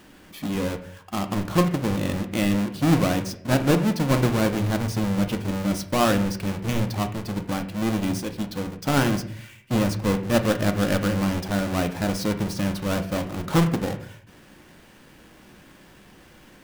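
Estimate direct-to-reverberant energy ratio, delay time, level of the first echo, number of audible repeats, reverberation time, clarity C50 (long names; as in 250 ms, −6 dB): 6.5 dB, no echo audible, no echo audible, no echo audible, 0.55 s, 11.5 dB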